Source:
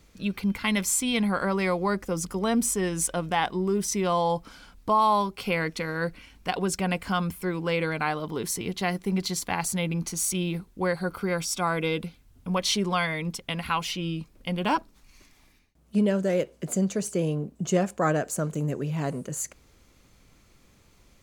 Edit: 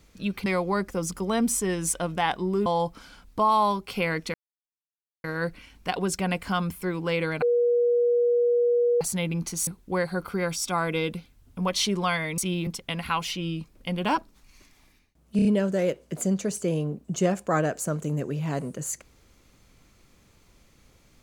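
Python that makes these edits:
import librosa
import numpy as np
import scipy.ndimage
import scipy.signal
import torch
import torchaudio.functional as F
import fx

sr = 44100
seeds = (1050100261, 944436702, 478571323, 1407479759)

y = fx.edit(x, sr, fx.cut(start_s=0.46, length_s=1.14),
    fx.cut(start_s=3.8, length_s=0.36),
    fx.insert_silence(at_s=5.84, length_s=0.9),
    fx.bleep(start_s=8.02, length_s=1.59, hz=480.0, db=-18.5),
    fx.move(start_s=10.27, length_s=0.29, to_s=13.27),
    fx.stutter(start_s=15.96, slice_s=0.03, count=4), tone=tone)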